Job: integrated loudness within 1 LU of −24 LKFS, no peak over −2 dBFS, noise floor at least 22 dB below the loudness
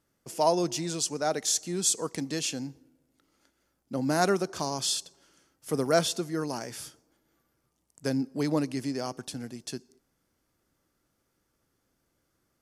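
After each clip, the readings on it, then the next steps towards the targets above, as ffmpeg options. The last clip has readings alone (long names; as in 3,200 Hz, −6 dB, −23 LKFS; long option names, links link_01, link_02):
integrated loudness −29.5 LKFS; sample peak −9.0 dBFS; target loudness −24.0 LKFS
→ -af "volume=5.5dB"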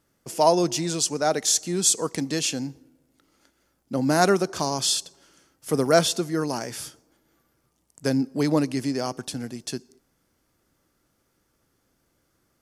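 integrated loudness −24.0 LKFS; sample peak −3.5 dBFS; background noise floor −71 dBFS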